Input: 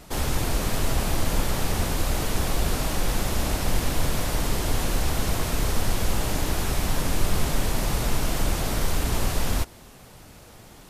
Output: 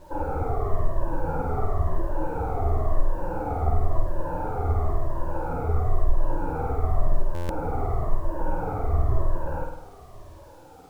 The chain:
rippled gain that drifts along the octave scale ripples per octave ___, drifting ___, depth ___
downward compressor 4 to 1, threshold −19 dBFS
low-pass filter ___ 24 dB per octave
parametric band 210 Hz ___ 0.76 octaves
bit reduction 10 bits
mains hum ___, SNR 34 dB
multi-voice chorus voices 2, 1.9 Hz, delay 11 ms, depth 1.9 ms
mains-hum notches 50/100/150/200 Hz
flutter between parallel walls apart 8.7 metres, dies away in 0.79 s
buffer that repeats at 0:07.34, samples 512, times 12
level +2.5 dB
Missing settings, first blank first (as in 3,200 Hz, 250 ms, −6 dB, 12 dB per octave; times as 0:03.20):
1.3, −0.96 Hz, 19 dB, 1,100 Hz, −14 dB, 50 Hz